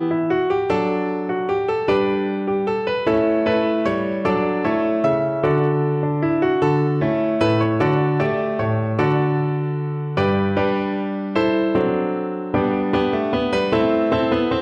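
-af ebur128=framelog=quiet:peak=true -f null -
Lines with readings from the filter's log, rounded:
Integrated loudness:
  I:         -19.9 LUFS
  Threshold: -29.9 LUFS
Loudness range:
  LRA:         1.7 LU
  Threshold: -39.9 LUFS
  LRA low:   -20.8 LUFS
  LRA high:  -19.0 LUFS
True peak:
  Peak:       -5.8 dBFS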